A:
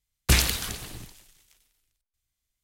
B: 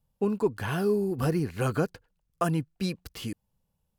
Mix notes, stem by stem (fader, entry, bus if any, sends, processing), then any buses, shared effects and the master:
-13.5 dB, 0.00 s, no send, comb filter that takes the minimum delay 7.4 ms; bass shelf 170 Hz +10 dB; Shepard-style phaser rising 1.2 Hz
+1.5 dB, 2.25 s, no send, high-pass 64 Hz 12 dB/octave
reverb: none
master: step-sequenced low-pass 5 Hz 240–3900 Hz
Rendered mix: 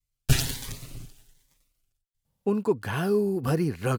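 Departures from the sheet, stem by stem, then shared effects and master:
stem A -13.5 dB -> -4.0 dB; master: missing step-sequenced low-pass 5 Hz 240–3900 Hz

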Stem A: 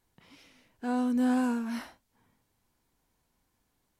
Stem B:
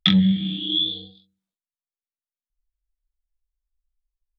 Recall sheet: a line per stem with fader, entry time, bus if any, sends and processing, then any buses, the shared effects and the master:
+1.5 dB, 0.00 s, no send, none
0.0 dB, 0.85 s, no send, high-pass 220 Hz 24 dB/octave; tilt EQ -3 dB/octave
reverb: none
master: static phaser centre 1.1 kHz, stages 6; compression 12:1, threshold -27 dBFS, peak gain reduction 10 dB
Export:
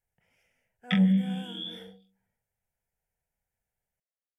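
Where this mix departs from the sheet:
stem A +1.5 dB -> -9.5 dB; master: missing compression 12:1, threshold -27 dBFS, peak gain reduction 10 dB

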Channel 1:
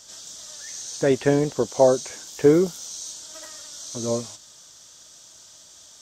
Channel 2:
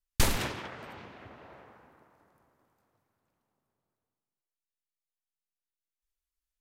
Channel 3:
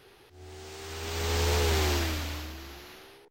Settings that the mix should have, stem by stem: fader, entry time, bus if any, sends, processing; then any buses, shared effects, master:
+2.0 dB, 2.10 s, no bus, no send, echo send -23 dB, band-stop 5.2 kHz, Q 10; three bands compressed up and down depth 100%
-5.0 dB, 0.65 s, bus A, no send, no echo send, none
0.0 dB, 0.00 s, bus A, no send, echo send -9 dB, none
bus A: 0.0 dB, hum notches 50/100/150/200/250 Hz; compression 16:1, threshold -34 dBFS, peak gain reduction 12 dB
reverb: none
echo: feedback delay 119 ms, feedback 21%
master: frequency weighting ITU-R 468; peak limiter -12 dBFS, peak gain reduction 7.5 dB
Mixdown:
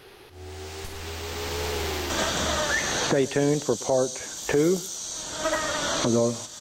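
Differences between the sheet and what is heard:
stem 3 0.0 dB -> +7.0 dB; master: missing frequency weighting ITU-R 468

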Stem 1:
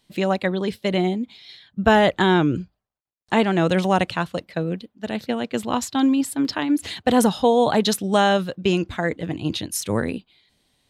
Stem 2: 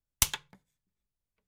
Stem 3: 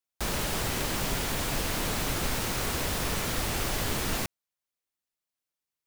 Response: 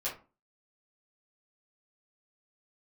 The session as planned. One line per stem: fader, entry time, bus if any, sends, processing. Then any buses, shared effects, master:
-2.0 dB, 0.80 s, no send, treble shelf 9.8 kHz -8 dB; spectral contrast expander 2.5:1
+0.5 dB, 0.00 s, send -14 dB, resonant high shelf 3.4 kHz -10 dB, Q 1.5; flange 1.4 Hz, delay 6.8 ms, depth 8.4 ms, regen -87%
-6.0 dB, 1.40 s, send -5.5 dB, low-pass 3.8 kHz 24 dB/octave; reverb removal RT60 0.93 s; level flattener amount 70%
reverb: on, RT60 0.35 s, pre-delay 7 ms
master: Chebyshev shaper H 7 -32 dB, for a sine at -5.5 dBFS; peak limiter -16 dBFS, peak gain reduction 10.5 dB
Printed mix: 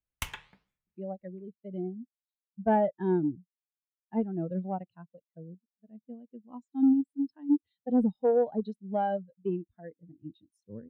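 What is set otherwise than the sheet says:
stem 1 -2.0 dB -> -8.5 dB; stem 3: muted

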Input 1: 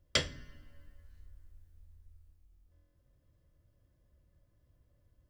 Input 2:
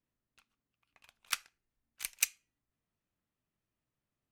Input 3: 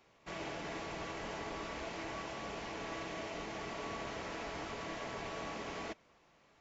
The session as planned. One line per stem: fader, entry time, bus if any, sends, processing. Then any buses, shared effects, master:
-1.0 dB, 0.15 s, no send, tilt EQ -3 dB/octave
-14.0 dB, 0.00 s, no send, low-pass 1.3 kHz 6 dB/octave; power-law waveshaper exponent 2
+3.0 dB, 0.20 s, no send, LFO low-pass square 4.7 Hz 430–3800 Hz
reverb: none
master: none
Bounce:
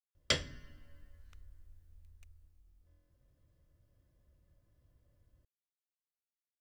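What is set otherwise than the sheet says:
stem 1: missing tilt EQ -3 dB/octave; stem 2 -14.0 dB -> -21.0 dB; stem 3: muted

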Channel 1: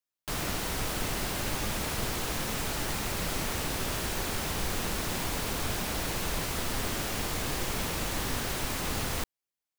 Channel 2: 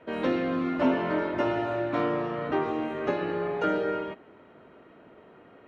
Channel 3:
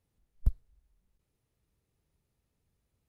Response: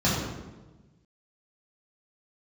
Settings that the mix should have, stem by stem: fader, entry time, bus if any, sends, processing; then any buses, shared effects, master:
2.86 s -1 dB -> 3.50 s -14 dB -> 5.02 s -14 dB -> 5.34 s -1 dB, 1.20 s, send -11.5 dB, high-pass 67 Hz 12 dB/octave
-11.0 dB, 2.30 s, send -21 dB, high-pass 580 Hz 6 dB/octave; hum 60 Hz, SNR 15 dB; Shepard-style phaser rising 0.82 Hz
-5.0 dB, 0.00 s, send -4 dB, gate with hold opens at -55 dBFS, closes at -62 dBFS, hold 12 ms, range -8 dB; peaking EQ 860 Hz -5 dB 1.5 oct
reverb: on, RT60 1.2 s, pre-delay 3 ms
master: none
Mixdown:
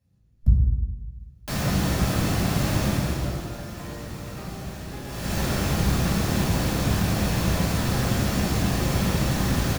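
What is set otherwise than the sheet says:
stem 1: missing high-pass 67 Hz 12 dB/octave; stem 2: entry 2.30 s -> 1.85 s; stem 3: missing gate with hold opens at -55 dBFS, closes at -62 dBFS, hold 12 ms, range -8 dB

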